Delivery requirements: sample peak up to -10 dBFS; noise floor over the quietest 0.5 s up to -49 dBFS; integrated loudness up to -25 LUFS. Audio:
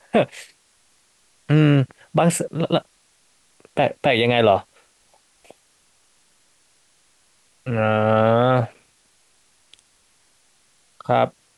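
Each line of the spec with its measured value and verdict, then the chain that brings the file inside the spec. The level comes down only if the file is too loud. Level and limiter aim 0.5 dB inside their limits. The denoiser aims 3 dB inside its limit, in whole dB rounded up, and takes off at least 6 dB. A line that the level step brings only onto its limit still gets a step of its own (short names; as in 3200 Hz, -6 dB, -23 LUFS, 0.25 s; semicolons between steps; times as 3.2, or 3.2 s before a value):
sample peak -5.0 dBFS: fail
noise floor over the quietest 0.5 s -60 dBFS: OK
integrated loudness -19.5 LUFS: fail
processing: gain -6 dB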